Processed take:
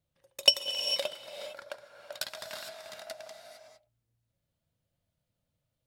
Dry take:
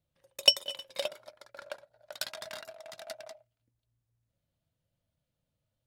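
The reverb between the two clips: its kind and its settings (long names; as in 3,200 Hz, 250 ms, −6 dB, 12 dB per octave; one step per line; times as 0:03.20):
reverb whose tail is shaped and stops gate 480 ms rising, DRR 6 dB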